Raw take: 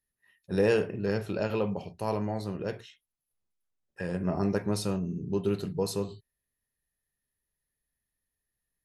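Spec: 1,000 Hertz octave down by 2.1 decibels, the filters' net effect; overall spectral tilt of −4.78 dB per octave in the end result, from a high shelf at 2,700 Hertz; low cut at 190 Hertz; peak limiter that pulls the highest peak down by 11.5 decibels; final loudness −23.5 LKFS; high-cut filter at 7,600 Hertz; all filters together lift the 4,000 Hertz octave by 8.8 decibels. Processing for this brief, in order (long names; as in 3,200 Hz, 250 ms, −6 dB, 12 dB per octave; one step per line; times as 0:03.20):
high-pass filter 190 Hz
low-pass filter 7,600 Hz
parametric band 1,000 Hz −4 dB
high-shelf EQ 2,700 Hz +7.5 dB
parametric band 4,000 Hz +5 dB
level +12.5 dB
brickwall limiter −12 dBFS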